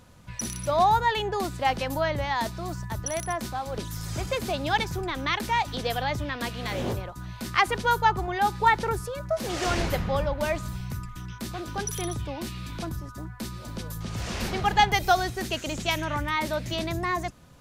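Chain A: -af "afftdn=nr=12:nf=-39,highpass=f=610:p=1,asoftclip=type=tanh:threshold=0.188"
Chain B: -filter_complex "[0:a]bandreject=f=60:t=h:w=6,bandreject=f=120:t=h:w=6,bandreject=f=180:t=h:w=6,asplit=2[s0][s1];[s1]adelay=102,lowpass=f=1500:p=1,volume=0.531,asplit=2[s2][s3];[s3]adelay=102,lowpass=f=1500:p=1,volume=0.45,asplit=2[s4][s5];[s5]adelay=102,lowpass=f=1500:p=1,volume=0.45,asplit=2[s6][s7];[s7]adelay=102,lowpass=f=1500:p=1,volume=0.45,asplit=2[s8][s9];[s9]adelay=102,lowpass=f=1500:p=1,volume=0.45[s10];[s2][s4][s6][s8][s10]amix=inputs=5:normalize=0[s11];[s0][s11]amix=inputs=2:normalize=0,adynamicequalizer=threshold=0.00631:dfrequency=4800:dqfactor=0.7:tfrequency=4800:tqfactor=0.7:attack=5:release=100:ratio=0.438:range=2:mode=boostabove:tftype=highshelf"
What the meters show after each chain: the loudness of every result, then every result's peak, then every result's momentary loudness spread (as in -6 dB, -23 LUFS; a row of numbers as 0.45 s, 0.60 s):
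-30.0 LUFS, -26.5 LUFS; -14.5 dBFS, -5.5 dBFS; 19 LU, 14 LU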